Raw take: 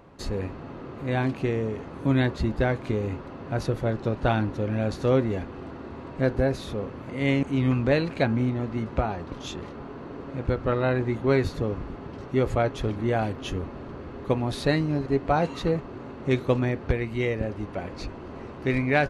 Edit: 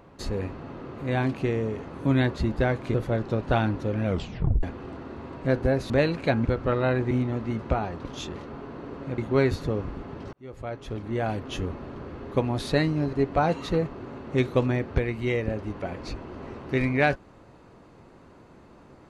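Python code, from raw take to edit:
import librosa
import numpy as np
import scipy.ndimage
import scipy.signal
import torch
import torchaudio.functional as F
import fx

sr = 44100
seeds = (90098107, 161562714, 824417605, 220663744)

y = fx.edit(x, sr, fx.cut(start_s=2.94, length_s=0.74),
    fx.tape_stop(start_s=4.79, length_s=0.58),
    fx.cut(start_s=6.64, length_s=1.19),
    fx.move(start_s=10.45, length_s=0.66, to_s=8.38),
    fx.fade_in_span(start_s=12.26, length_s=1.23), tone=tone)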